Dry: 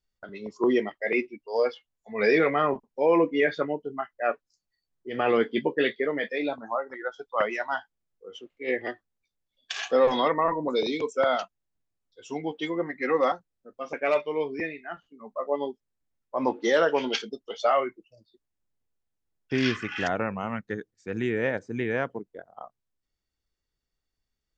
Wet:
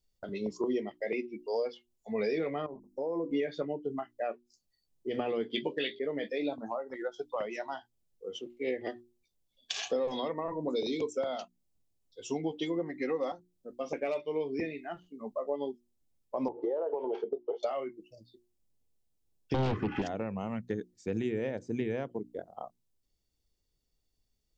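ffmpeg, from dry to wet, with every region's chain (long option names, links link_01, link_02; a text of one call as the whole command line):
ffmpeg -i in.wav -filter_complex "[0:a]asettb=1/sr,asplit=3[link_01][link_02][link_03];[link_01]atrim=end=2.664[link_04];[link_02]atrim=start=2.66:end=3.31,asetpts=PTS-STARTPTS,afade=type=in:duration=0.004:curve=qsin,afade=type=out:start_time=0.646:duration=0.004:curve=qsin,bandreject=frequency=50:width_type=h:width=6,bandreject=frequency=100:width_type=h:width=6,bandreject=frequency=150:width_type=h:width=6,bandreject=frequency=200:width_type=h:width=6,bandreject=frequency=250:width_type=h:width=6,bandreject=frequency=300:width_type=h:width=6,bandreject=frequency=350:width_type=h:width=6,acompressor=threshold=-38dB:ratio=2.5:attack=3.2:release=140:knee=1:detection=peak,asuperstop=centerf=2700:order=4:qfactor=0.75[link_05];[link_03]atrim=start=3.306[link_06];[link_04][link_05]acrossfade=duration=0.004:curve1=hsin:curve2=qsin[link_07];[link_07][link_06]acrossfade=duration=0.004:curve1=qsin:curve2=hsin,asettb=1/sr,asplit=3[link_08][link_09][link_10];[link_08]atrim=end=5.504[link_11];[link_09]atrim=start=5.5:end=5.99,asetpts=PTS-STARTPTS,afade=type=in:duration=0.004:curve=qsin,afade=type=out:start_time=0.486:duration=0.004:curve=qsin,equalizer=frequency=3200:width_type=o:width=2.5:gain=14,bandreject=frequency=202:width_type=h:width=4,bandreject=frequency=404:width_type=h:width=4,bandreject=frequency=606:width_type=h:width=4[link_12];[link_10]atrim=start=5.986[link_13];[link_11][link_12]acrossfade=duration=0.004:curve1=hsin:curve2=qsin[link_14];[link_14][link_13]acrossfade=duration=0.004:curve1=qsin:curve2=hsin,asettb=1/sr,asplit=3[link_15][link_16][link_17];[link_15]atrim=end=16.484[link_18];[link_16]atrim=start=16.48:end=17.63,asetpts=PTS-STARTPTS,afade=type=in:duration=0.004:curve=qsin,afade=type=out:start_time=1.146:duration=0.004:curve=qsin,lowpass=frequency=900:width_type=q:width=2.9,lowshelf=frequency=280:width_type=q:width=3:gain=-11.5,acompressor=threshold=-27dB:ratio=4:attack=3.2:release=140:knee=1:detection=peak[link_19];[link_17]atrim=start=17.626[link_20];[link_18][link_19]acrossfade=duration=0.004:curve1=hsin:curve2=qsin[link_21];[link_21][link_20]acrossfade=duration=0.004:curve1=qsin:curve2=hsin,asettb=1/sr,asplit=3[link_22][link_23][link_24];[link_22]atrim=end=19.544[link_25];[link_23]atrim=start=19.54:end=20.02,asetpts=PTS-STARTPTS,afade=type=in:duration=0.004:curve=qsin,afade=type=out:start_time=0.476:duration=0.004:curve=qsin,lowpass=1000,aeval=exprs='0.168*sin(PI/2*4.47*val(0)/0.168)':channel_layout=same[link_26];[link_24]atrim=start=20.016[link_27];[link_25][link_26]acrossfade=duration=0.004:curve1=hsin:curve2=qsin[link_28];[link_28][link_27]acrossfade=duration=0.004:curve1=qsin:curve2=hsin,acompressor=threshold=-33dB:ratio=5,equalizer=frequency=1500:width_type=o:width=1.5:gain=-13,bandreject=frequency=60:width_type=h:width=6,bandreject=frequency=120:width_type=h:width=6,bandreject=frequency=180:width_type=h:width=6,bandreject=frequency=240:width_type=h:width=6,bandreject=frequency=300:width_type=h:width=6,bandreject=frequency=360:width_type=h:width=6,volume=5.5dB" out.wav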